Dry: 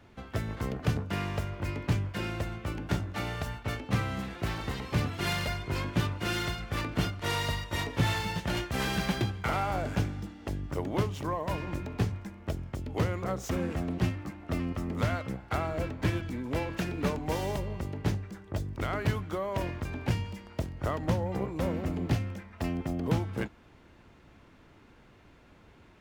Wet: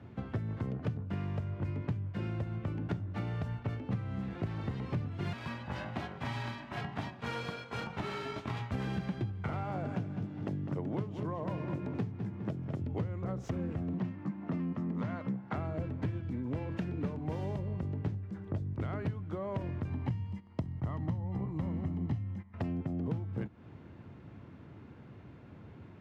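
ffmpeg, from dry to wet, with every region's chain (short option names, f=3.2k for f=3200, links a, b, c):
-filter_complex "[0:a]asettb=1/sr,asplit=3[a][b][c];[a]atrim=end=5.334[d];[b]atrim=start=5.33:end=8.72,asetpts=PTS-STARTPTS,afade=t=in:d=0.004:c=qsin,afade=t=out:st=3.386:d=0.004:c=qsin,highpass=330,aeval=exprs='val(0)*sin(2*PI*470*n/s)':c=same[e];[c]atrim=start=8.716[f];[d][e]acrossfade=d=0.004:c1=hsin:c2=qsin[g];[g][f]acrossfade=d=0.004:c1=qsin:c2=hsin,asettb=1/sr,asplit=3[h][i][j];[h]atrim=end=9.634[k];[i]atrim=start=9.63:end=12.81,asetpts=PTS-STARTPTS,afade=t=in:d=0.004:c=qsin,afade=t=out:st=3.176:d=0.004:c=qsin,highpass=f=120:w=0.5412,highpass=f=120:w=1.3066,asplit=2[l][m];[m]adelay=203,lowpass=f=4.5k:p=1,volume=-9dB,asplit=2[n][o];[o]adelay=203,lowpass=f=4.5k:p=1,volume=0.27,asplit=2[p][q];[q]adelay=203,lowpass=f=4.5k:p=1,volume=0.27[r];[l][n][p][r]amix=inputs=4:normalize=0,atrim=end_sample=140238[s];[j]atrim=start=12.806[t];[k][s]acrossfade=d=0.004:c1=hsin:c2=qsin[u];[u][t]acrossfade=d=0.004:c1=qsin:c2=hsin,asettb=1/sr,asplit=3[v][w][x];[v]atrim=end=13.934[y];[w]atrim=start=13.93:end=15.56,asetpts=PTS-STARTPTS,afade=t=in:d=0.004:c=qsin,afade=t=out:st=1.626:d=0.004:c=qsin,asoftclip=type=hard:threshold=-23dB,highpass=f=130:w=0.5412,highpass=f=130:w=1.3066,equalizer=f=200:t=q:w=4:g=8,equalizer=f=990:t=q:w=4:g=7,equalizer=f=1.8k:t=q:w=4:g=4,lowpass=f=7.7k:w=0.5412,lowpass=f=7.7k:w=1.3066[z];[x]atrim=start=15.556[aa];[y][z]acrossfade=d=0.004:c1=hsin:c2=qsin[ab];[ab][aa]acrossfade=d=0.004:c1=qsin:c2=hsin,asettb=1/sr,asplit=3[ac][ad][ae];[ac]atrim=end=19.904[af];[ad]atrim=start=19.9:end=22.54,asetpts=PTS-STARTPTS,afade=t=in:d=0.004:c=qsin,afade=t=out:st=2.636:d=0.004:c=qsin,agate=range=-13dB:threshold=-45dB:ratio=16:release=100:detection=peak,aecho=1:1:1:0.5,atrim=end_sample=116424[ag];[ae]atrim=start=22.536[ah];[af][ag]acrossfade=d=0.004:c1=hsin:c2=qsin[ai];[ai][ah]acrossfade=d=0.004:c1=qsin:c2=hsin,highpass=f=100:w=0.5412,highpass=f=100:w=1.3066,aemphasis=mode=reproduction:type=riaa,acompressor=threshold=-33dB:ratio=6"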